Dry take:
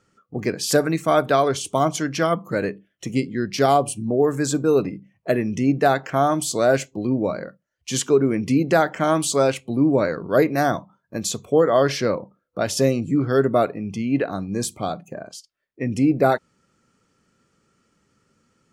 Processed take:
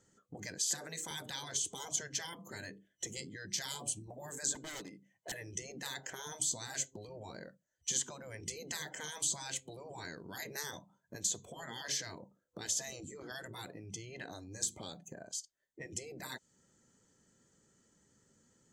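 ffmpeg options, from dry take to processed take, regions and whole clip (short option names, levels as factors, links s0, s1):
-filter_complex "[0:a]asettb=1/sr,asplit=3[s0][s1][s2];[s0]atrim=end=0.584[s3];[s1]atrim=start=0.58:end=1.11,asetpts=PTS-STARTPTS,afade=t=in:d=0.004:c=qsin,afade=t=out:st=0.526:d=0.004:c=qsin,highpass=300,bandreject=f=60:t=h:w=6,bandreject=f=120:t=h:w=6,bandreject=f=180:t=h:w=6,bandreject=f=240:t=h:w=6,bandreject=f=300:t=h:w=6,bandreject=f=360:t=h:w=6,bandreject=f=420:t=h:w=6,bandreject=f=480:t=h:w=6,bandreject=f=540:t=h:w=6[s4];[s2]atrim=start=1.106[s5];[s3][s4]acrossfade=d=0.004:c1=hsin:c2=qsin[s6];[s6][s5]acrossfade=d=0.004:c1=qsin:c2=hsin,asettb=1/sr,asplit=3[s7][s8][s9];[s7]atrim=end=4.554[s10];[s8]atrim=start=4.55:end=5.32,asetpts=PTS-STARTPTS,afade=t=in:d=0.004:c=qsin,afade=t=out:st=0.766:d=0.004:c=qsin,highpass=f=670:p=1,aeval=exprs='0.0422*(abs(mod(val(0)/0.0422+3,4)-2)-1)':c=same[s11];[s9]atrim=start=5.316[s12];[s10][s11]acrossfade=d=0.004:c1=hsin:c2=qsin[s13];[s13][s12]acrossfade=d=0.004:c1=qsin:c2=hsin,afftfilt=real='re*lt(hypot(re,im),0.251)':imag='im*lt(hypot(re,im),0.251)':win_size=1024:overlap=0.75,superequalizer=10b=0.398:12b=0.398:15b=2.82,acrossover=split=2500|6100[s14][s15][s16];[s14]acompressor=threshold=0.00891:ratio=4[s17];[s15]acompressor=threshold=0.0251:ratio=4[s18];[s16]acompressor=threshold=0.02:ratio=4[s19];[s17][s18][s19]amix=inputs=3:normalize=0,volume=0.531"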